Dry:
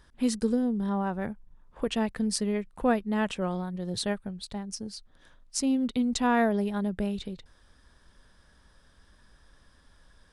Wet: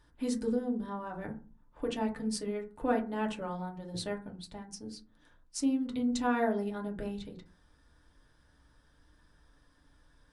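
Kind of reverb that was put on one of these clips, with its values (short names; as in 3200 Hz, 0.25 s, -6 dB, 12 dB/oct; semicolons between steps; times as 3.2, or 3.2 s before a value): FDN reverb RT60 0.36 s, low-frequency decay 1.45×, high-frequency decay 0.35×, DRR 0 dB; gain -8.5 dB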